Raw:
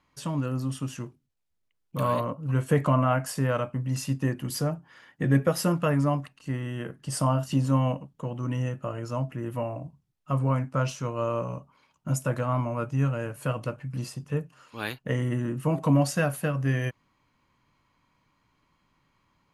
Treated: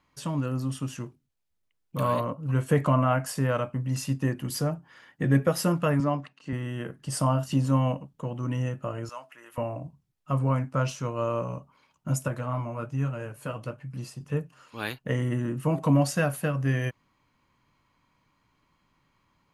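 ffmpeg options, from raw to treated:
-filter_complex "[0:a]asettb=1/sr,asplit=3[a][b][c];[a]atrim=end=6.004[d];[b]atrim=start=6:end=6.53,asetpts=PTS-STARTPTS,afade=t=in:d=0.004:c=qsin,afade=t=out:st=0.526:d=0.004:c=qsin,highpass=160,lowpass=5.5k[e];[c]atrim=start=6.526[f];[d][e]acrossfade=d=0.004:c1=hsin:c2=qsin[g];[g][f]acrossfade=d=0.004:c1=qsin:c2=hsin,asettb=1/sr,asplit=3[h][i][j];[h]atrim=end=9.094[k];[i]atrim=start=9.09:end=9.58,asetpts=PTS-STARTPTS,afade=t=in:d=0.004:c=qsin,afade=t=out:st=0.486:d=0.004:c=qsin,highpass=1.1k[l];[j]atrim=start=9.576[m];[k][l]acrossfade=d=0.004:c1=hsin:c2=qsin[n];[n][m]acrossfade=d=0.004:c1=qsin:c2=hsin,asettb=1/sr,asplit=3[o][p][q];[o]atrim=end=12.284[r];[p]atrim=start=12.28:end=14.21,asetpts=PTS-STARTPTS,afade=t=in:d=0.004:c=qsin,afade=t=out:st=1.926:d=0.004:c=qsin,flanger=delay=4.7:depth=6.9:regen=-51:speed=1.2:shape=triangular[s];[q]atrim=start=14.206[t];[r][s]acrossfade=d=0.004:c1=hsin:c2=qsin[u];[u][t]acrossfade=d=0.004:c1=qsin:c2=hsin"

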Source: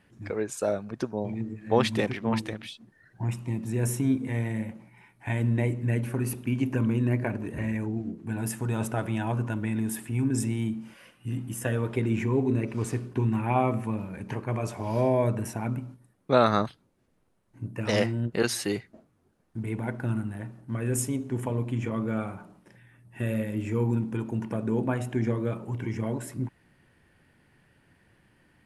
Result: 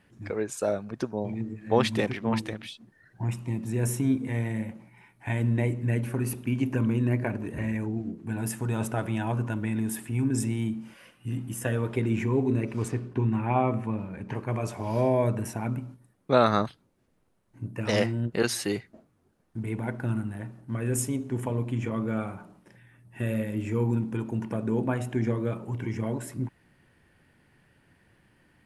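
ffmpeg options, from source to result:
-filter_complex "[0:a]asettb=1/sr,asplit=3[a][b][c];[a]atrim=end=12.884[d];[b]atrim=start=12.88:end=14.35,asetpts=PTS-STARTPTS,afade=t=in:d=0.004:c=qsin,afade=t=out:st=1.466:d=0.004:c=qsin,aemphasis=mode=reproduction:type=50kf[e];[c]atrim=start=14.346[f];[d][e]acrossfade=d=0.004:c1=hsin:c2=qsin[g];[g][f]acrossfade=d=0.004:c1=qsin:c2=hsin"

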